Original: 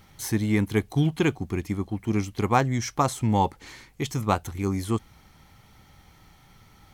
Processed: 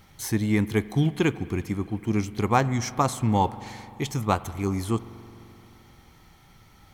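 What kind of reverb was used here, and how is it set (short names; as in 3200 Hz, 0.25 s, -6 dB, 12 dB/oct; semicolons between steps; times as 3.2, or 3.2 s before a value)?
spring tank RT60 3.1 s, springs 43 ms, chirp 50 ms, DRR 15.5 dB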